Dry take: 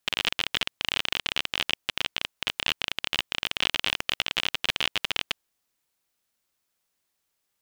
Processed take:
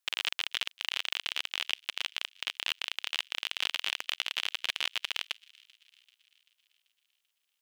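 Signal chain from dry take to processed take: high-pass 1.2 kHz 6 dB/octave; feedback echo behind a high-pass 388 ms, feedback 56%, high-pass 2.4 kHz, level -23.5 dB; trim -4.5 dB

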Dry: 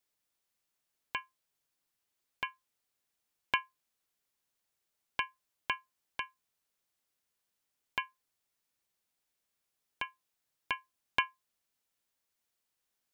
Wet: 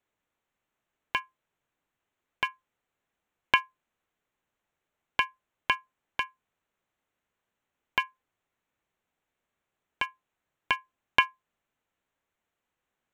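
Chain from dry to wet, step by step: local Wiener filter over 9 samples; trim +8 dB

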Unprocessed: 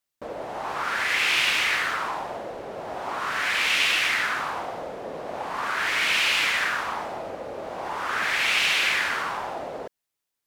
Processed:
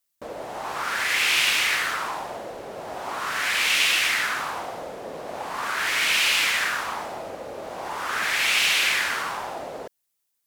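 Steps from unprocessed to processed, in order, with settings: treble shelf 5.3 kHz +10.5 dB; trim -1 dB

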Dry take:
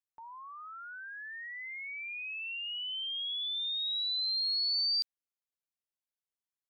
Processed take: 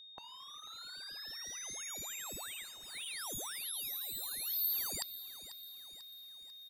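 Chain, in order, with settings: median filter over 15 samples; spectral gate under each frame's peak -10 dB weak; resampled via 32 kHz; whistle 3.7 kHz -65 dBFS; bit-crushed delay 493 ms, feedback 55%, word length 12-bit, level -14 dB; trim +13.5 dB

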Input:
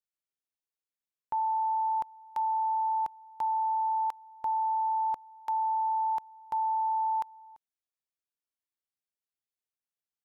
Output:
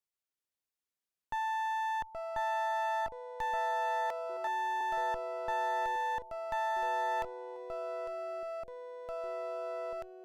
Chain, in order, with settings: one-sided clip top -42 dBFS, bottom -26 dBFS; ever faster or slower copies 382 ms, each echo -5 st, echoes 3, each echo -6 dB; 4.10–4.81 s: steep high-pass 290 Hz; trim -1 dB

